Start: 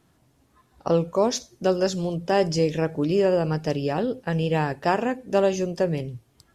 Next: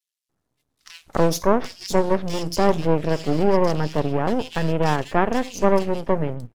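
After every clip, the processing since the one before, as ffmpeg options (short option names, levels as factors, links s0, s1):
-filter_complex "[0:a]agate=range=0.158:threshold=0.00158:ratio=16:detection=peak,aeval=exprs='max(val(0),0)':c=same,acrossover=split=2600[s0][s1];[s0]adelay=290[s2];[s2][s1]amix=inputs=2:normalize=0,volume=2"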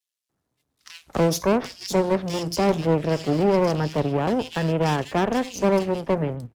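-filter_complex "[0:a]highpass=41,acrossover=split=130|420|3900[s0][s1][s2][s3];[s2]asoftclip=type=hard:threshold=0.1[s4];[s0][s1][s4][s3]amix=inputs=4:normalize=0"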